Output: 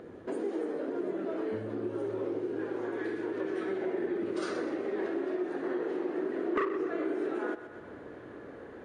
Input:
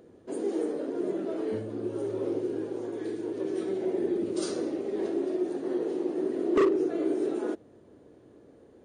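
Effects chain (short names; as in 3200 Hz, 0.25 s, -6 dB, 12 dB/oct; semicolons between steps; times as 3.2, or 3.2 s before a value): bell 1600 Hz +8 dB 1.8 oct, from 2.59 s +15 dB; thinning echo 0.125 s, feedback 41%, level -13.5 dB; compressor 2.5:1, threshold -42 dBFS, peak gain reduction 18.5 dB; high shelf 4700 Hz -10.5 dB; gain +6 dB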